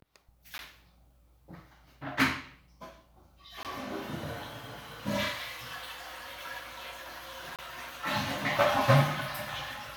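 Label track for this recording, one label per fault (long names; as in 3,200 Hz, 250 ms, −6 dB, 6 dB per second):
0.580000	0.590000	drop-out 11 ms
3.630000	3.650000	drop-out 18 ms
7.560000	7.590000	drop-out 27 ms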